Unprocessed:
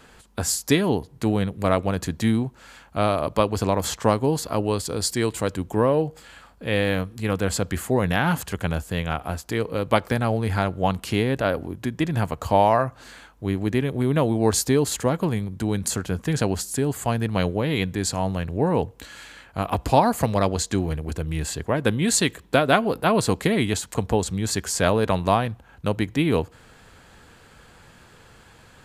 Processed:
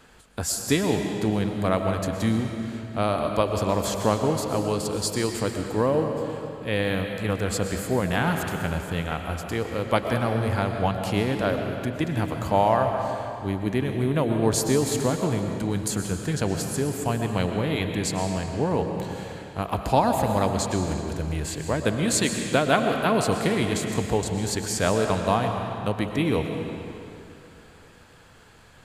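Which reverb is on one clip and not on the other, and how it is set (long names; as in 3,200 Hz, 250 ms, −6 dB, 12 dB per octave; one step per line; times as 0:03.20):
comb and all-pass reverb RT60 2.7 s, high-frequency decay 0.85×, pre-delay 80 ms, DRR 4 dB
level −3 dB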